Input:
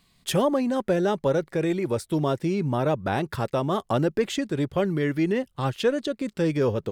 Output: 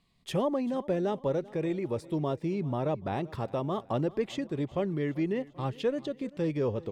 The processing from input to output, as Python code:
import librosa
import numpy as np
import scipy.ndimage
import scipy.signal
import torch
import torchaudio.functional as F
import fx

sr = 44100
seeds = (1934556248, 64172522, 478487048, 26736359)

y = fx.lowpass(x, sr, hz=2900.0, slope=6)
y = fx.peak_eq(y, sr, hz=1500.0, db=-8.0, octaves=0.32)
y = fx.echo_feedback(y, sr, ms=390, feedback_pct=52, wet_db=-21)
y = y * librosa.db_to_amplitude(-6.0)